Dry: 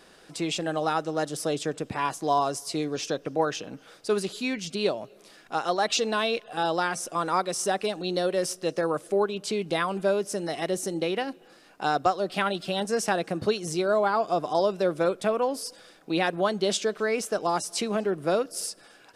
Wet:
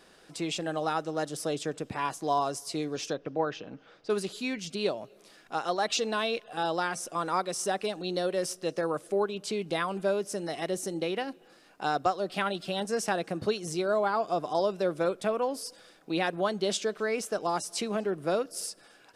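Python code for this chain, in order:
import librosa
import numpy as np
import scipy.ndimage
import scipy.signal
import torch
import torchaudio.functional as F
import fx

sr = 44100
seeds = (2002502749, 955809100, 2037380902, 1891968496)

y = fx.air_absorb(x, sr, metres=180.0, at=(3.13, 4.1))
y = F.gain(torch.from_numpy(y), -3.5).numpy()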